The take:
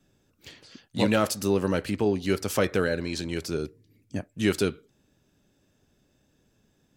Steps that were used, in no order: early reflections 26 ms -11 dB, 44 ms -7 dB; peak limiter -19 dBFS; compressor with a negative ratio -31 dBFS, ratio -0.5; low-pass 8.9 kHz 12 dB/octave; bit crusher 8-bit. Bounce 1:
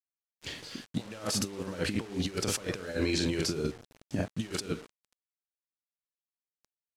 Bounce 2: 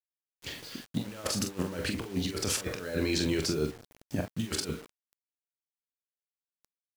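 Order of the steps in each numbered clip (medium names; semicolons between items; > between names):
early reflections > compressor with a negative ratio > bit crusher > low-pass > peak limiter; compressor with a negative ratio > low-pass > peak limiter > early reflections > bit crusher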